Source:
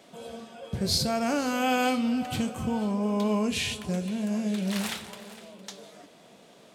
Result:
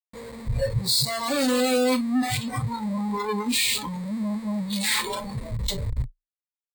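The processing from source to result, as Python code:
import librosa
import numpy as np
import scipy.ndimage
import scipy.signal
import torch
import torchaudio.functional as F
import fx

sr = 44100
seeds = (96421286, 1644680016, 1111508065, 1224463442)

y = fx.schmitt(x, sr, flips_db=-42.5)
y = fx.ripple_eq(y, sr, per_octave=0.98, db=11)
y = fx.noise_reduce_blind(y, sr, reduce_db=19)
y = y * librosa.db_to_amplitude(6.5)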